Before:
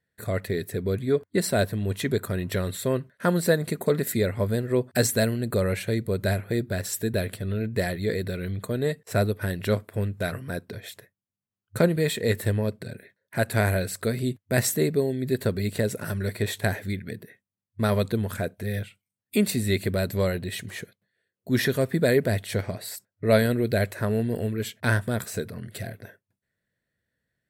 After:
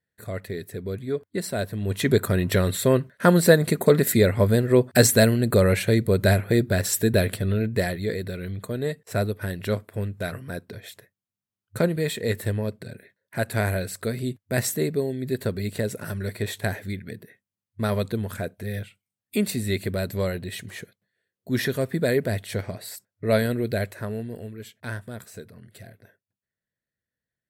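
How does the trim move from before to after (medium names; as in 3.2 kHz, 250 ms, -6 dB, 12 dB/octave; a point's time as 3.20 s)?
1.63 s -4.5 dB
2.12 s +6 dB
7.39 s +6 dB
8.17 s -1.5 dB
23.69 s -1.5 dB
24.53 s -10 dB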